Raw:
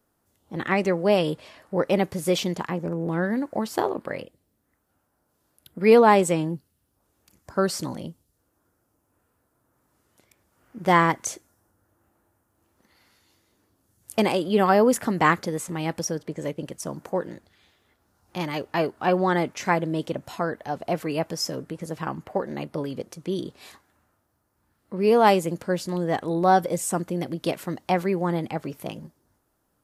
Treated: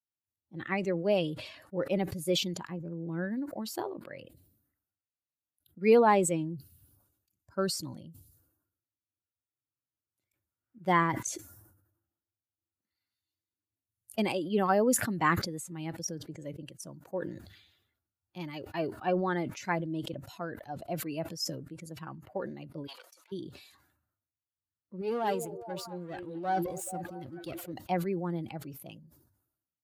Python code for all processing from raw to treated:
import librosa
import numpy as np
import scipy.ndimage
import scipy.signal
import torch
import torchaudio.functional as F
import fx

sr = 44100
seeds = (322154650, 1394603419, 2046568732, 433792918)

y = fx.chain(x, sr, fx.overload_stage(gain_db=32.0),
    fx.highpass(hz=670.0, slope=24), at=(22.87, 23.32))
y = fx.chain(y, sr, fx.halfwave_gain(db=-12.0),
    fx.echo_stepped(ms=216, hz=390.0, octaves=0.7, feedback_pct=70, wet_db=-5),
    fx.sustainer(db_per_s=64.0), at=(25.01, 27.73))
y = fx.bin_expand(y, sr, power=1.5)
y = scipy.signal.sosfilt(scipy.signal.butter(2, 100.0, 'highpass', fs=sr, output='sos'), y)
y = fx.sustainer(y, sr, db_per_s=67.0)
y = F.gain(torch.from_numpy(y), -5.5).numpy()